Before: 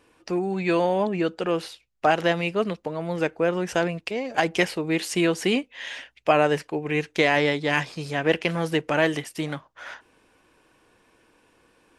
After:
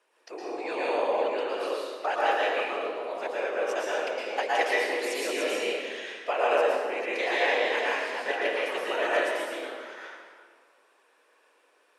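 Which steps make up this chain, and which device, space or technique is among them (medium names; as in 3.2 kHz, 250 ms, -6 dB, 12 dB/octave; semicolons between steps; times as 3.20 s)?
whispering ghost (whisper effect; high-pass 430 Hz 24 dB/octave; reverberation RT60 1.9 s, pre-delay 107 ms, DRR -6 dB); trim -9 dB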